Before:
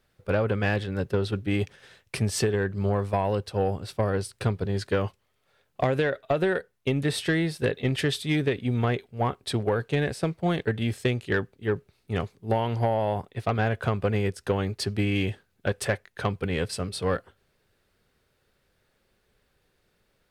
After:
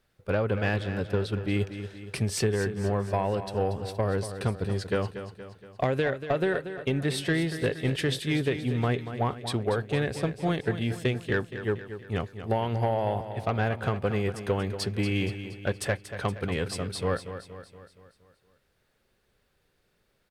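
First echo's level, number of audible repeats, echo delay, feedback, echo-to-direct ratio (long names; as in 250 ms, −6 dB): −11.0 dB, 5, 235 ms, 52%, −9.5 dB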